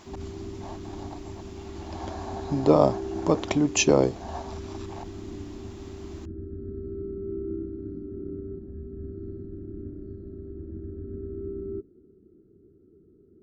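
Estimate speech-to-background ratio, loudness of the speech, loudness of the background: 14.0 dB, −23.5 LKFS, −37.5 LKFS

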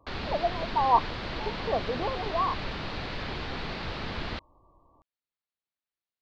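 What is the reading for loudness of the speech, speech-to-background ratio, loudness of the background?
−29.5 LKFS, 6.0 dB, −35.5 LKFS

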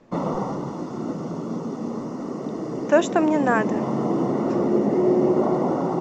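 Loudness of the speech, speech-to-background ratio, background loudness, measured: −22.0 LKFS, 2.5 dB, −24.5 LKFS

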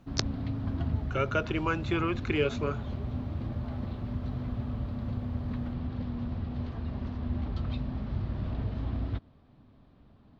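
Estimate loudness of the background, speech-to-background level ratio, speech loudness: −35.0 LKFS, 3.5 dB, −31.5 LKFS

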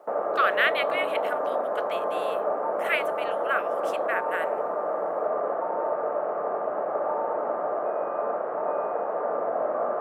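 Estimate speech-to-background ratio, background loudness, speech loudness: −0.5 dB, −28.0 LKFS, −28.5 LKFS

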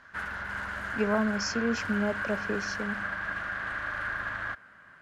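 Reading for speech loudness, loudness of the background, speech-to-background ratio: −31.5 LKFS, −33.5 LKFS, 2.0 dB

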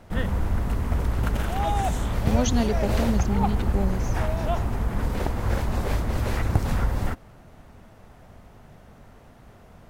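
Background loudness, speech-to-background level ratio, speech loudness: −26.5 LKFS, −1.5 dB, −28.0 LKFS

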